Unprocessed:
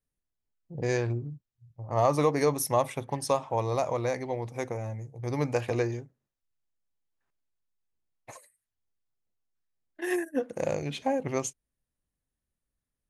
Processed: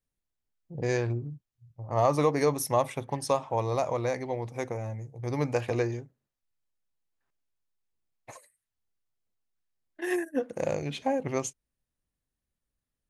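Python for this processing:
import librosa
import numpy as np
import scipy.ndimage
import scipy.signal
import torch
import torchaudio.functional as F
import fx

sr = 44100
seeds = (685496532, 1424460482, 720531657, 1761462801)

y = fx.high_shelf(x, sr, hz=10000.0, db=-4.0)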